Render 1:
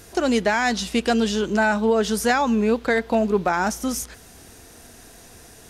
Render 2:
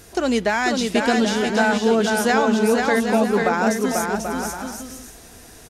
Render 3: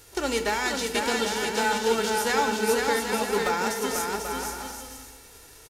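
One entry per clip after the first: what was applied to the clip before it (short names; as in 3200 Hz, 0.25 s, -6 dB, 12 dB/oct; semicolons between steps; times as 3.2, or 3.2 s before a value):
bouncing-ball echo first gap 0.49 s, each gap 0.6×, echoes 5
spectral whitening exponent 0.6; comb 2.2 ms, depth 50%; on a send at -7.5 dB: reverb RT60 1.5 s, pre-delay 4 ms; on the sum: gain -7.5 dB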